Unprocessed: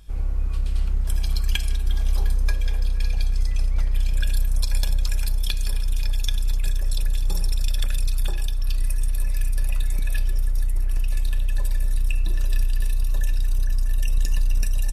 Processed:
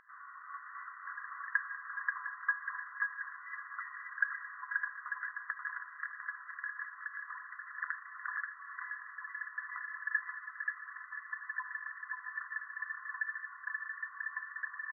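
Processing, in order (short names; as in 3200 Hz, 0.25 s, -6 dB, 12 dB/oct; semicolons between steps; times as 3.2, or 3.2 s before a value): FFT band-pass 1000–2000 Hz; on a send: echo 0.532 s -3.5 dB; on the sum: gain +7.5 dB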